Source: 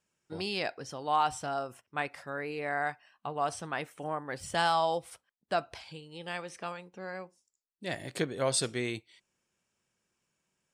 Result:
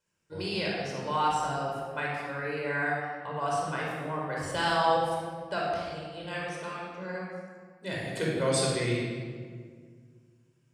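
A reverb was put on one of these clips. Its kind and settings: shoebox room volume 2700 m³, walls mixed, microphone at 4.9 m; gain -4.5 dB

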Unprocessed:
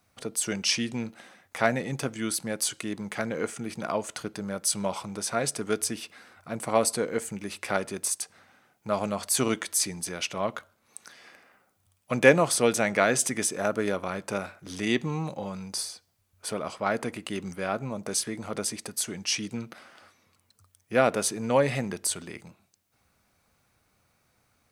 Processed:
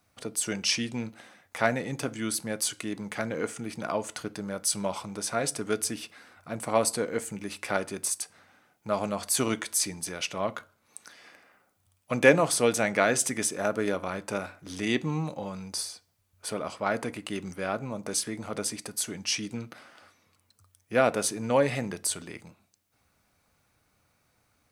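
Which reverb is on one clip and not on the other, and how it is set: FDN reverb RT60 0.35 s, low-frequency decay 1.25×, high-frequency decay 0.7×, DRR 15 dB; gain -1 dB

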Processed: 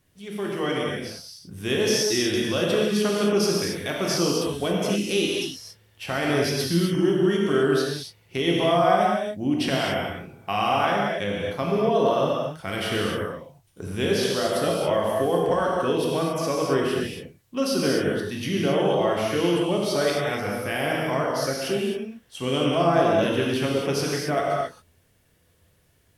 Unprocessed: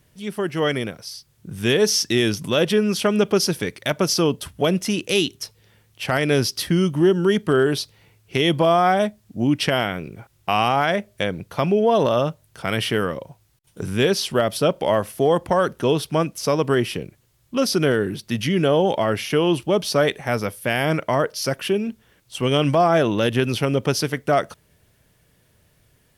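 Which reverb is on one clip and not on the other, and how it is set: non-linear reverb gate 0.3 s flat, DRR -3.5 dB; gain -8 dB

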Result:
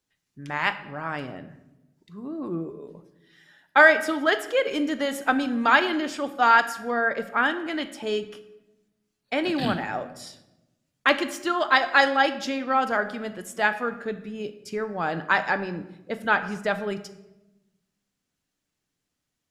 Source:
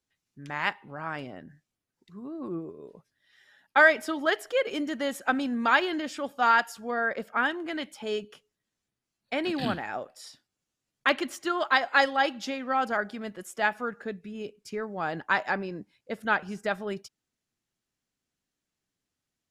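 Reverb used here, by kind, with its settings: shoebox room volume 390 m³, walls mixed, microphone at 0.41 m; gain +3.5 dB

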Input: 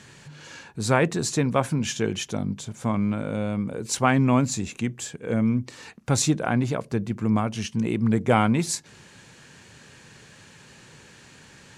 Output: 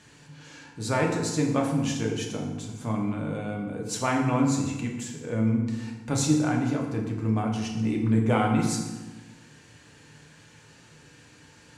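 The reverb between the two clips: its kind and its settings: FDN reverb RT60 1.2 s, low-frequency decay 1.35×, high-frequency decay 0.7×, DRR -0.5 dB; gain -7 dB

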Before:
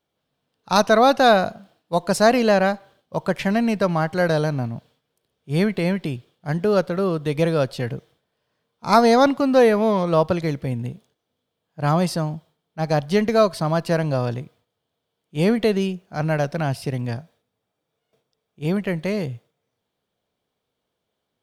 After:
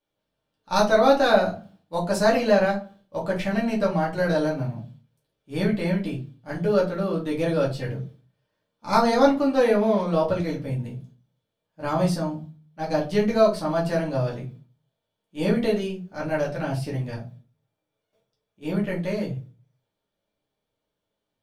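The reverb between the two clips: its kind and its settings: shoebox room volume 130 m³, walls furnished, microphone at 2.4 m; gain -10 dB

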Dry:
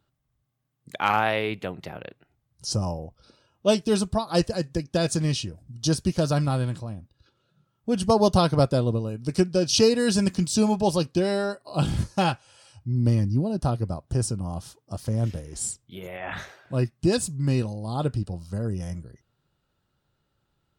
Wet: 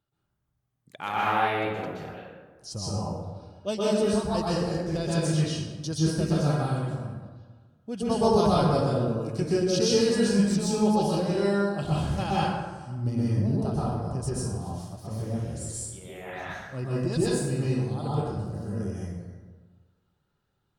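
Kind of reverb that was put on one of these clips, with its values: plate-style reverb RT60 1.4 s, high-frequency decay 0.5×, pre-delay 0.11 s, DRR -8 dB; gain -10.5 dB

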